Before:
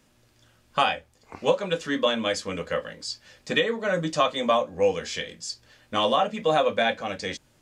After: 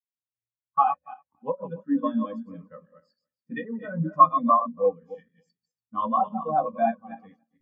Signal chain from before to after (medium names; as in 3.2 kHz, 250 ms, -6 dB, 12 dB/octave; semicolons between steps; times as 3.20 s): backward echo that repeats 143 ms, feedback 46%, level -4 dB; ten-band graphic EQ 125 Hz +5 dB, 250 Hz +6 dB, 500 Hz -6 dB, 1 kHz +7 dB, 4 kHz -5 dB; spectral contrast expander 2.5:1